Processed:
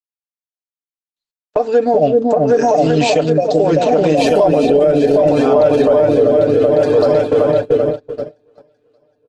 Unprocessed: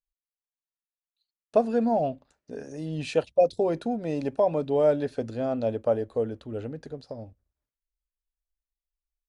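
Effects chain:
high-pass filter 99 Hz 12 dB per octave
low-shelf EQ 280 Hz −11.5 dB
echo whose low-pass opens from repeat to repeat 383 ms, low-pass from 400 Hz, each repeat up 2 octaves, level 0 dB
noise gate −36 dBFS, range −33 dB
downward compressor 5 to 1, threshold −26 dBFS, peak gain reduction 8.5 dB
rotating-speaker cabinet horn 0.65 Hz
0:02.02–0:04.57: high-shelf EQ 6,100 Hz +11.5 dB
comb filter 6.7 ms, depth 81%
boost into a limiter +25 dB
level −3 dB
Opus 16 kbit/s 48,000 Hz

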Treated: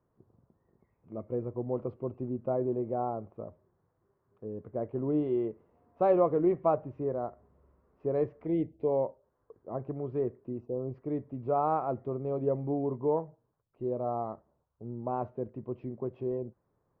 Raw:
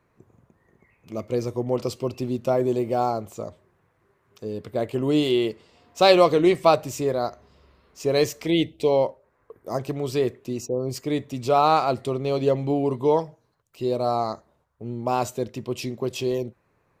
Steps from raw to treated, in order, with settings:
Bessel low-pass filter 930 Hz, order 4
level −7.5 dB

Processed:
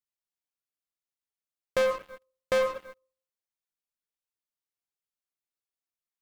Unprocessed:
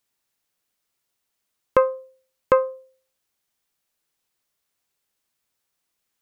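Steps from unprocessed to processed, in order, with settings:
brickwall limiter −13 dBFS, peak gain reduction 8.5 dB
flanger 1 Hz, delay 0.3 ms, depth 3.3 ms, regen +77%
on a send at −16 dB: convolution reverb RT60 0.75 s, pre-delay 78 ms
on the sum: leveller curve on the samples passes 5
level −5 dB

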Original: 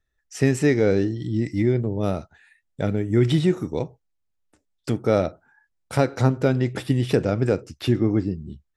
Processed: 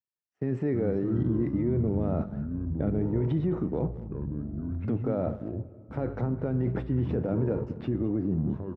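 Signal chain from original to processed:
mu-law and A-law mismatch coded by A
low-pass filter 1,200 Hz 12 dB per octave
noise gate with hold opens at −38 dBFS
high-pass filter 140 Hz 12 dB per octave
low-shelf EQ 230 Hz +7 dB
automatic gain control
transient designer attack −4 dB, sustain 0 dB
reversed playback
downward compressor 6 to 1, threshold −25 dBFS, peak gain reduction 16 dB
reversed playback
brickwall limiter −25 dBFS, peak gain reduction 11 dB
delay with pitch and tempo change per echo 153 ms, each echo −6 semitones, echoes 2, each echo −6 dB
far-end echo of a speakerphone 210 ms, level −17 dB
on a send at −19 dB: convolution reverb RT60 2.9 s, pre-delay 4 ms
on the sum: level +5 dB

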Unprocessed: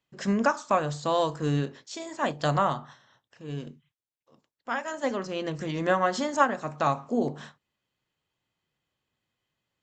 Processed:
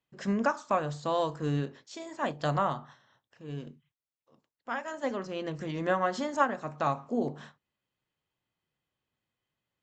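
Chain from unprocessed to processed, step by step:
high-shelf EQ 4,400 Hz −6 dB
level −3.5 dB

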